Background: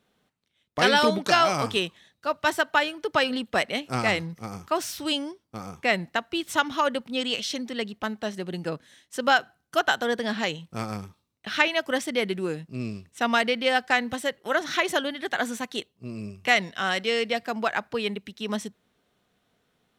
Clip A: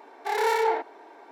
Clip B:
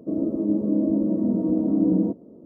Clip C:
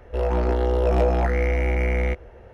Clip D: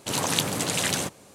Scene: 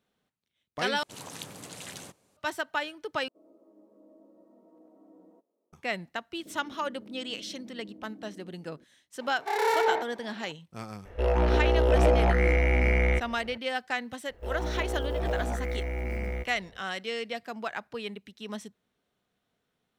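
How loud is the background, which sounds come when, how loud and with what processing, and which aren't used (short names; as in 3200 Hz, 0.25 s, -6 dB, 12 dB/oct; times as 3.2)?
background -8.5 dB
1.03 replace with D -17 dB
3.28 replace with B -14 dB + HPF 1100 Hz
6.39 add B -13 dB + compressor, threshold -34 dBFS
9.21 add A -1.5 dB
11.05 add C -2 dB + bell 2600 Hz +4.5 dB 1.5 oct
14.29 add C -10.5 dB + block floating point 7-bit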